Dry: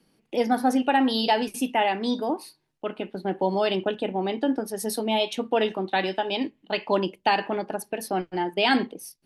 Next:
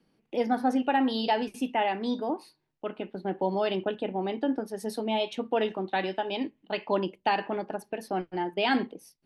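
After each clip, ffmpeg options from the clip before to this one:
-af "aemphasis=mode=reproduction:type=50kf,volume=0.668"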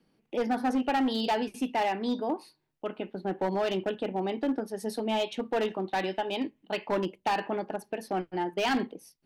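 -af "asoftclip=type=hard:threshold=0.075"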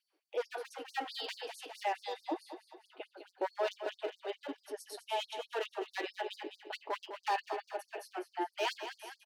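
-filter_complex "[0:a]flanger=delay=4.6:depth=1.9:regen=-45:speed=1.1:shape=triangular,asplit=2[s0][s1];[s1]aecho=0:1:204|408|612|816|1020|1224:0.316|0.171|0.0922|0.0498|0.0269|0.0145[s2];[s0][s2]amix=inputs=2:normalize=0,afftfilt=real='re*gte(b*sr/1024,270*pow(4400/270,0.5+0.5*sin(2*PI*4.6*pts/sr)))':imag='im*gte(b*sr/1024,270*pow(4400/270,0.5+0.5*sin(2*PI*4.6*pts/sr)))':win_size=1024:overlap=0.75,volume=0.891"

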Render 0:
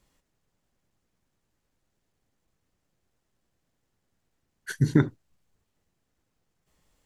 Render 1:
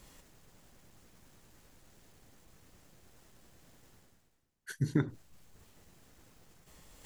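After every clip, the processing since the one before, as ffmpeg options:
-af "highshelf=f=7700:g=4,areverse,acompressor=mode=upward:threshold=0.0316:ratio=2.5,areverse,volume=0.355"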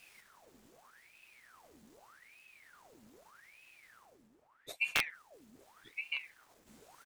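-filter_complex "[0:a]asplit=2[s0][s1];[s1]adelay=1166,volume=0.447,highshelf=f=4000:g=-26.2[s2];[s0][s2]amix=inputs=2:normalize=0,aeval=exprs='(mod(8.91*val(0)+1,2)-1)/8.91':c=same,aeval=exprs='val(0)*sin(2*PI*1400*n/s+1400*0.85/0.82*sin(2*PI*0.82*n/s))':c=same"

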